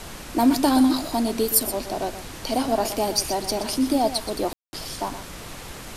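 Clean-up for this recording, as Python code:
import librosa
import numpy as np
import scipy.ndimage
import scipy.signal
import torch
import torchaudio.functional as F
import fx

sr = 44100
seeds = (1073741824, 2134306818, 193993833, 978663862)

y = fx.fix_ambience(x, sr, seeds[0], print_start_s=5.37, print_end_s=5.87, start_s=4.53, end_s=4.73)
y = fx.noise_reduce(y, sr, print_start_s=5.37, print_end_s=5.87, reduce_db=30.0)
y = fx.fix_echo_inverse(y, sr, delay_ms=123, level_db=-11.5)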